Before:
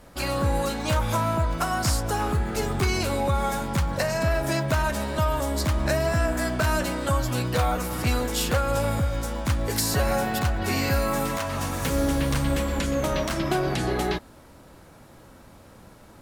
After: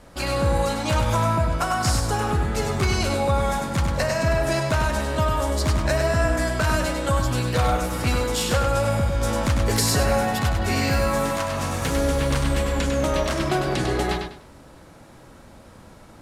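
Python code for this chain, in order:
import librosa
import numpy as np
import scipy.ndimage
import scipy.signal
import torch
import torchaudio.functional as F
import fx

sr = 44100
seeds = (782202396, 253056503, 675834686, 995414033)

y = scipy.signal.sosfilt(scipy.signal.butter(2, 11000.0, 'lowpass', fs=sr, output='sos'), x)
y = fx.echo_feedback(y, sr, ms=99, feedback_pct=27, wet_db=-5.5)
y = fx.env_flatten(y, sr, amount_pct=50, at=(9.21, 10.03))
y = y * 10.0 ** (1.5 / 20.0)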